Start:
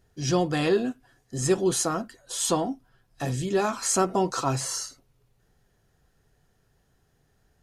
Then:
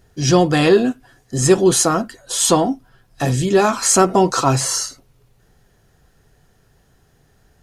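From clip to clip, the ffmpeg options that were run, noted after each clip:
ffmpeg -i in.wav -af "acontrast=50,volume=4.5dB" out.wav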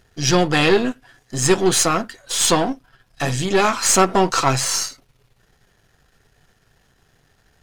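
ffmpeg -i in.wav -af "aeval=exprs='if(lt(val(0),0),0.447*val(0),val(0))':channel_layout=same,equalizer=frequency=2600:width=0.41:gain=7.5,volume=-2dB" out.wav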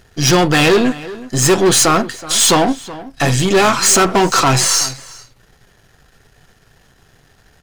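ffmpeg -i in.wav -filter_complex "[0:a]volume=15.5dB,asoftclip=hard,volume=-15.5dB,asplit=2[link_01][link_02];[link_02]adelay=373.2,volume=-17dB,highshelf=frequency=4000:gain=-8.4[link_03];[link_01][link_03]amix=inputs=2:normalize=0,volume=8dB" out.wav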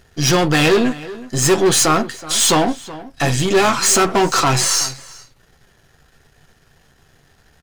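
ffmpeg -i in.wav -filter_complex "[0:a]asplit=2[link_01][link_02];[link_02]adelay=13,volume=-11.5dB[link_03];[link_01][link_03]amix=inputs=2:normalize=0,volume=-3dB" out.wav

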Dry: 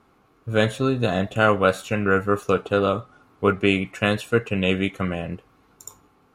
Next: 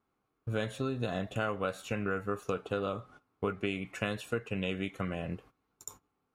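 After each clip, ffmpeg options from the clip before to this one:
ffmpeg -i in.wav -af "agate=range=-17dB:threshold=-46dB:ratio=16:detection=peak,acompressor=threshold=-27dB:ratio=4,volume=-4dB" out.wav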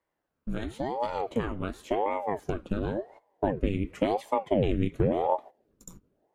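ffmpeg -i in.wav -af "asubboost=boost=10.5:cutoff=220,aeval=exprs='val(0)*sin(2*PI*410*n/s+410*0.8/0.93*sin(2*PI*0.93*n/s))':channel_layout=same" out.wav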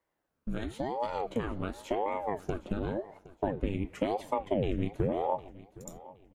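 ffmpeg -i in.wav -af "acompressor=threshold=-33dB:ratio=1.5,aecho=1:1:765|1530|2295:0.112|0.0348|0.0108" out.wav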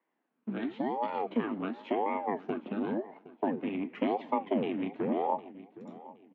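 ffmpeg -i in.wav -filter_complex "[0:a]acrossover=split=430[link_01][link_02];[link_01]volume=31.5dB,asoftclip=hard,volume=-31.5dB[link_03];[link_03][link_02]amix=inputs=2:normalize=0,highpass=frequency=200:width=0.5412,highpass=frequency=200:width=1.3066,equalizer=frequency=240:width_type=q:width=4:gain=8,equalizer=frequency=560:width_type=q:width=4:gain=-7,equalizer=frequency=1400:width_type=q:width=4:gain=-4,lowpass=frequency=3000:width=0.5412,lowpass=frequency=3000:width=1.3066,volume=2.5dB" out.wav

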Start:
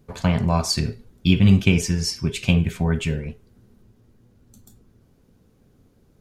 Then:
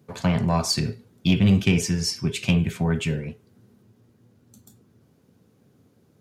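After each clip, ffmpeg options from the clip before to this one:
ffmpeg -i in.wav -af "highpass=frequency=95:width=0.5412,highpass=frequency=95:width=1.3066,acontrast=89,volume=-7.5dB" out.wav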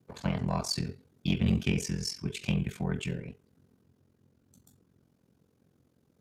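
ffmpeg -i in.wav -af "aeval=exprs='val(0)*sin(2*PI*22*n/s)':channel_layout=same,volume=-6dB" out.wav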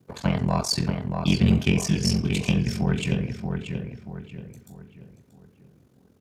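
ffmpeg -i in.wav -filter_complex "[0:a]asplit=2[link_01][link_02];[link_02]adelay=632,lowpass=frequency=2800:poles=1,volume=-5dB,asplit=2[link_03][link_04];[link_04]adelay=632,lowpass=frequency=2800:poles=1,volume=0.4,asplit=2[link_05][link_06];[link_06]adelay=632,lowpass=frequency=2800:poles=1,volume=0.4,asplit=2[link_07][link_08];[link_08]adelay=632,lowpass=frequency=2800:poles=1,volume=0.4,asplit=2[link_09][link_10];[link_10]adelay=632,lowpass=frequency=2800:poles=1,volume=0.4[link_11];[link_01][link_03][link_05][link_07][link_09][link_11]amix=inputs=6:normalize=0,volume=7dB" out.wav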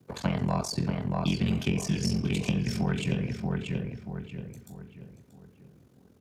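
ffmpeg -i in.wav -filter_complex "[0:a]acrossover=split=86|840[link_01][link_02][link_03];[link_01]acompressor=threshold=-44dB:ratio=4[link_04];[link_02]acompressor=threshold=-25dB:ratio=4[link_05];[link_03]acompressor=threshold=-35dB:ratio=4[link_06];[link_04][link_05][link_06]amix=inputs=3:normalize=0" out.wav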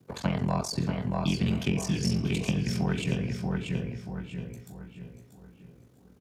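ffmpeg -i in.wav -af "aecho=1:1:649|1298|1947:0.282|0.0846|0.0254" out.wav

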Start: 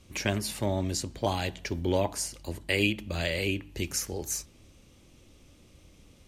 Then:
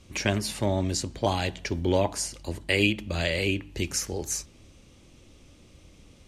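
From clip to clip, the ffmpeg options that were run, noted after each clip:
ffmpeg -i in.wav -af "lowpass=10000,volume=3dB" out.wav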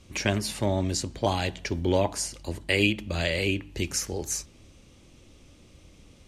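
ffmpeg -i in.wav -af anull out.wav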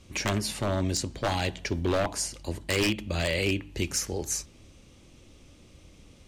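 ffmpeg -i in.wav -af "aeval=exprs='0.119*(abs(mod(val(0)/0.119+3,4)-2)-1)':channel_layout=same" out.wav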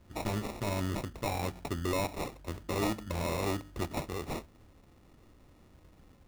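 ffmpeg -i in.wav -af "acrusher=samples=28:mix=1:aa=0.000001,volume=-5.5dB" out.wav

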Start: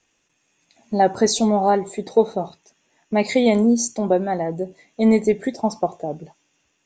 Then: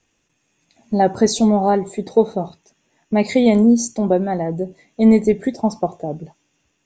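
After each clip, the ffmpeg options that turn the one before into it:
ffmpeg -i in.wav -af "lowshelf=frequency=290:gain=8.5,volume=-1dB" out.wav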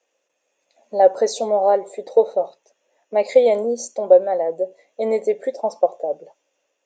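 ffmpeg -i in.wav -af "highpass=frequency=540:width_type=q:width=5.9,volume=-6.5dB" out.wav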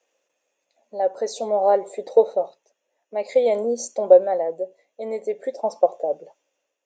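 ffmpeg -i in.wav -af "tremolo=f=0.5:d=0.64" out.wav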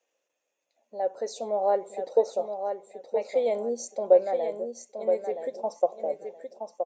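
ffmpeg -i in.wav -af "aecho=1:1:971|1942|2913:0.447|0.0983|0.0216,volume=-6.5dB" out.wav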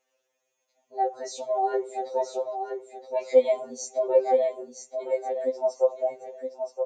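ffmpeg -i in.wav -af "afftfilt=real='re*2.45*eq(mod(b,6),0)':imag='im*2.45*eq(mod(b,6),0)':win_size=2048:overlap=0.75,volume=5dB" out.wav

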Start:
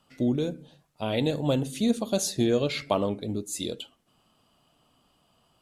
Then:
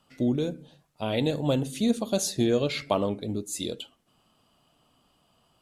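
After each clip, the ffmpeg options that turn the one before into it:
ffmpeg -i in.wav -af anull out.wav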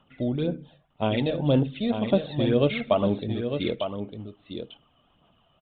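ffmpeg -i in.wav -af "aphaser=in_gain=1:out_gain=1:delay=1.7:decay=0.49:speed=1.9:type=sinusoidal,aecho=1:1:903:0.422,aresample=8000,aresample=44100" out.wav

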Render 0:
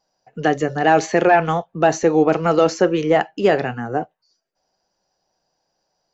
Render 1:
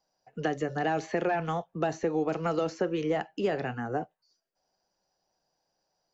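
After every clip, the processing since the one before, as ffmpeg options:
ffmpeg -i in.wav -filter_complex "[0:a]acrossover=split=260|3800[link_01][link_02][link_03];[link_01]acompressor=threshold=-29dB:ratio=4[link_04];[link_02]acompressor=threshold=-21dB:ratio=4[link_05];[link_03]acompressor=threshold=-46dB:ratio=4[link_06];[link_04][link_05][link_06]amix=inputs=3:normalize=0,volume=-6.5dB" out.wav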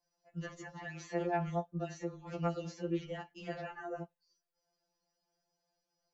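ffmpeg -i in.wav -af "alimiter=level_in=1dB:limit=-24dB:level=0:latency=1:release=14,volume=-1dB,afftfilt=real='re*2.83*eq(mod(b,8),0)':imag='im*2.83*eq(mod(b,8),0)':win_size=2048:overlap=0.75,volume=-3.5dB" out.wav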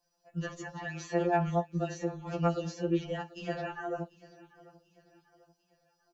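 ffmpeg -i in.wav -af "bandreject=frequency=2100:width=8.4,aecho=1:1:742|1484|2226:0.0891|0.0383|0.0165,volume=6dB" out.wav

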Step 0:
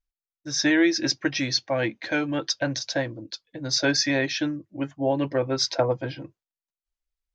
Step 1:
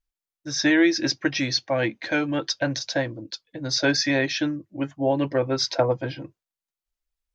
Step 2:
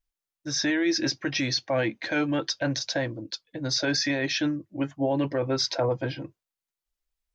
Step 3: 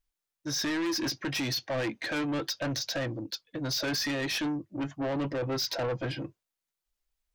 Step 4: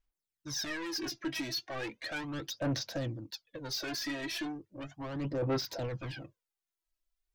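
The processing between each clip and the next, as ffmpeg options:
ffmpeg -i in.wav -filter_complex "[0:a]acrossover=split=5900[link_01][link_02];[link_02]acompressor=threshold=-37dB:ratio=4:attack=1:release=60[link_03];[link_01][link_03]amix=inputs=2:normalize=0,volume=1.5dB" out.wav
ffmpeg -i in.wav -af "alimiter=limit=-16.5dB:level=0:latency=1:release=29" out.wav
ffmpeg -i in.wav -af "asoftclip=type=tanh:threshold=-29dB,volume=1.5dB" out.wav
ffmpeg -i in.wav -af "aphaser=in_gain=1:out_gain=1:delay=3.1:decay=0.65:speed=0.36:type=sinusoidal,volume=-8dB" out.wav

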